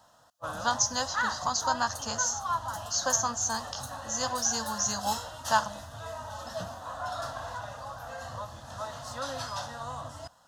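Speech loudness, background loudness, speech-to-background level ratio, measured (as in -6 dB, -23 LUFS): -29.5 LUFS, -37.0 LUFS, 7.5 dB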